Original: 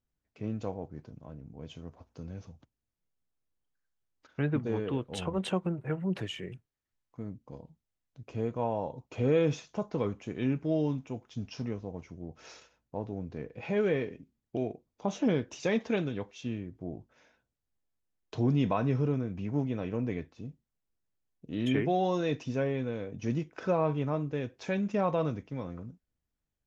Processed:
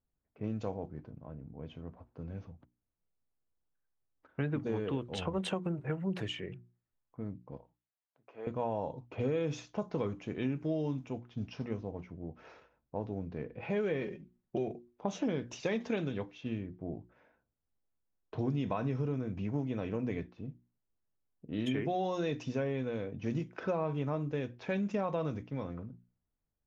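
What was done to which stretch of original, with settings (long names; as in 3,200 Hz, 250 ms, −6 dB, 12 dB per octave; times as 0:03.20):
0:07.57–0:08.47: Bessel high-pass filter 830 Hz
0:14.01–0:14.68: comb filter 5.4 ms
whole clip: mains-hum notches 60/120/180/240/300/360 Hz; low-pass that shuts in the quiet parts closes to 1,300 Hz, open at −28 dBFS; downward compressor, threshold −29 dBFS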